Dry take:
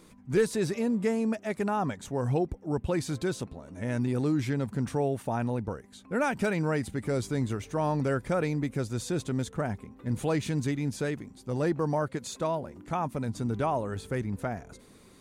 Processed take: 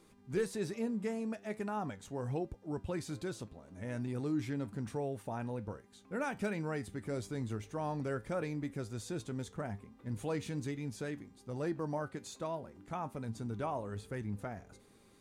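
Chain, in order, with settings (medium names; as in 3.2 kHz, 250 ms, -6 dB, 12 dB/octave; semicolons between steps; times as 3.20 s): mains buzz 400 Hz, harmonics 38, -63 dBFS -7 dB/octave; flange 1.2 Hz, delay 8.8 ms, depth 2 ms, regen +76%; trim -4.5 dB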